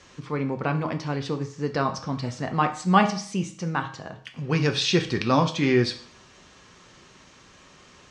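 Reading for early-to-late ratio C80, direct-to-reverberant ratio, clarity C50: 15.5 dB, 5.5 dB, 12.0 dB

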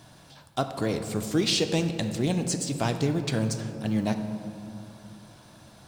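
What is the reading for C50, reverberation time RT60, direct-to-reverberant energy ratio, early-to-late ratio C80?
8.5 dB, 2.7 s, 7.0 dB, 9.5 dB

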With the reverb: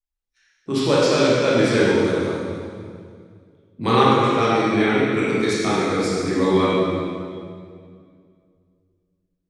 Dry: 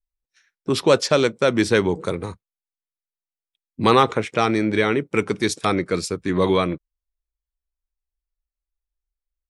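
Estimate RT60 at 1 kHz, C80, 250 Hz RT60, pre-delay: 2.0 s, -1.5 dB, 2.7 s, 18 ms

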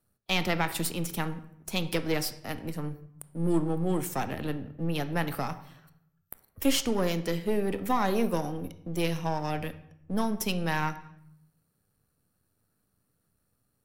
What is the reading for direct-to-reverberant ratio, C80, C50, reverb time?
11.0 dB, 16.0 dB, 13.5 dB, 0.70 s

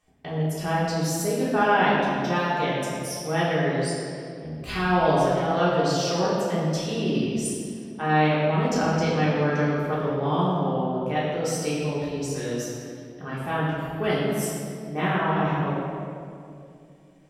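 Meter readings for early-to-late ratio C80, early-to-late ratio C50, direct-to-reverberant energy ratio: 0.5 dB, -1.5 dB, -9.5 dB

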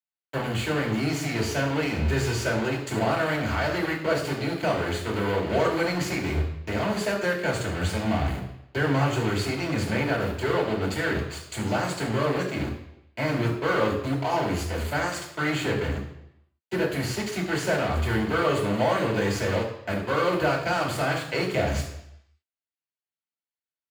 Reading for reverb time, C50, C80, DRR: 0.80 s, 7.0 dB, 9.5 dB, -2.5 dB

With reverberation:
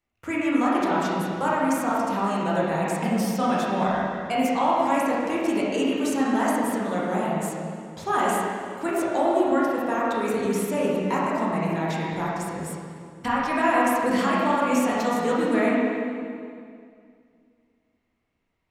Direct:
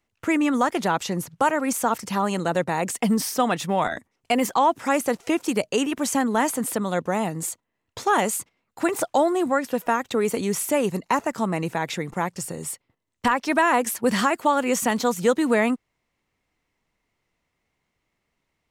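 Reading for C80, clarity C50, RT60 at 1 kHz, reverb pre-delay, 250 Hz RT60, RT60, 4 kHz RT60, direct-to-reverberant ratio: -0.5 dB, -3.0 dB, 2.1 s, 15 ms, 2.6 s, 2.3 s, 2.0 s, -6.5 dB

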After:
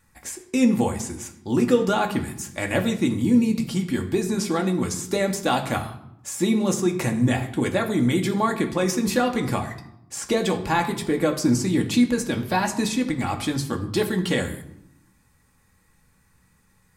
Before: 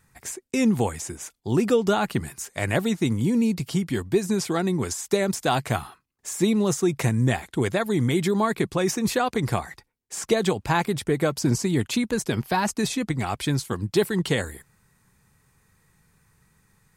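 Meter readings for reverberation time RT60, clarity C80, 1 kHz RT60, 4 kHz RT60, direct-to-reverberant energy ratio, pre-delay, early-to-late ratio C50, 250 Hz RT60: 0.80 s, 13.5 dB, 0.80 s, 0.55 s, 2.5 dB, 3 ms, 11.0 dB, 1.3 s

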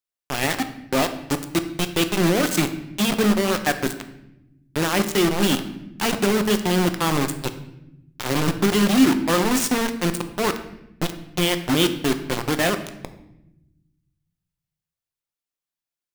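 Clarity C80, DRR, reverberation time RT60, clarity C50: 13.5 dB, 8.0 dB, 0.90 s, 11.5 dB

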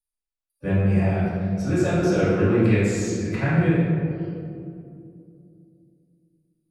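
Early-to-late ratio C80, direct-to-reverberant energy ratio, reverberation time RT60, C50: 0.0 dB, -13.0 dB, 2.5 s, -2.5 dB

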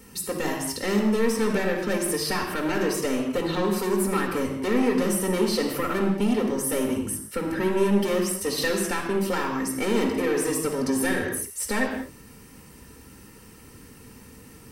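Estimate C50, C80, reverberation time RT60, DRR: 4.0 dB, 6.0 dB, not exponential, -0.5 dB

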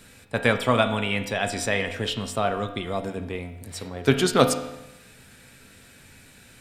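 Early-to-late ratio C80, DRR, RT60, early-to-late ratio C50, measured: 11.5 dB, 6.0 dB, 0.95 s, 9.5 dB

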